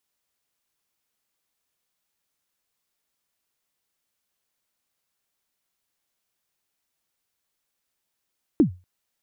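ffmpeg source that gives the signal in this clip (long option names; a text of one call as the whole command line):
ffmpeg -f lavfi -i "aevalsrc='0.355*pow(10,-3*t/0.28)*sin(2*PI*(350*0.105/log(90/350)*(exp(log(90/350)*min(t,0.105)/0.105)-1)+90*max(t-0.105,0)))':duration=0.24:sample_rate=44100" out.wav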